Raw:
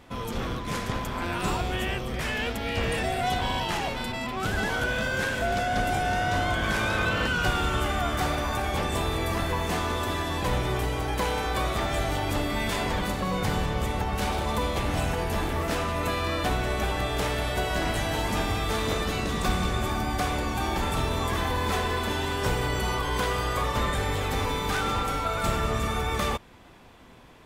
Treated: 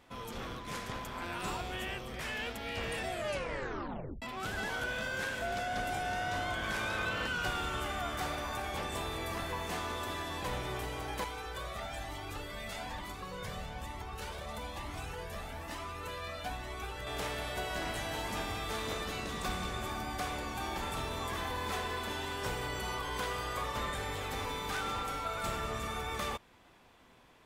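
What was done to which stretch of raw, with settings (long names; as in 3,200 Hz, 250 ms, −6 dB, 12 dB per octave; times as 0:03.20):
0:03.09: tape stop 1.13 s
0:11.24–0:17.07: flanger whose copies keep moving one way rising 1.1 Hz
whole clip: low-shelf EQ 380 Hz −6 dB; level −7.5 dB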